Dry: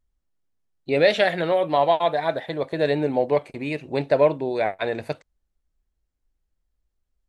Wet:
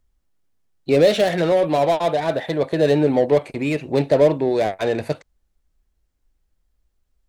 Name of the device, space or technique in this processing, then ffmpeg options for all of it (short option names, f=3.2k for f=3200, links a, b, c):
one-band saturation: -filter_complex "[0:a]acrossover=split=580|4600[a][b][c];[b]asoftclip=type=tanh:threshold=-33dB[d];[a][d][c]amix=inputs=3:normalize=0,volume=7dB"